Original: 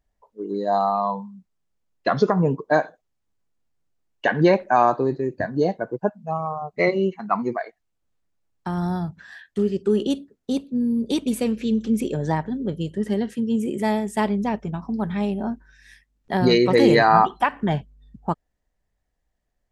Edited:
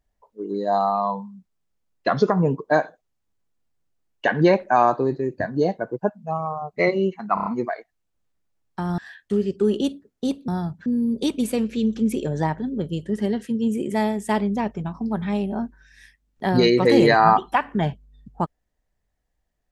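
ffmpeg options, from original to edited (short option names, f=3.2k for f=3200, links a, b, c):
-filter_complex "[0:a]asplit=8[a][b][c][d][e][f][g][h];[a]atrim=end=7.372[i];[b]atrim=start=7.338:end=7.372[j];[c]atrim=start=7.338:end=7.372[k];[d]atrim=start=7.338:end=7.372[l];[e]atrim=start=7.338:end=8.862[m];[f]atrim=start=9.238:end=10.742[n];[g]atrim=start=8.858:end=9.242[o];[h]atrim=start=10.738[p];[i][j]acrossfade=d=0.004:c1=hsin:c2=hsin[q];[q][k]acrossfade=d=0.004:c1=hsin:c2=hsin[r];[r][l]acrossfade=d=0.004:c1=hsin:c2=hsin[s];[s][m]acrossfade=d=0.004:c1=hsin:c2=hsin[t];[t][n]acrossfade=d=0.004:c1=hsin:c2=hsin[u];[u][o]acrossfade=d=0.004:c1=hsin:c2=hsin[v];[v][p]acrossfade=d=0.004:c1=hsin:c2=hsin"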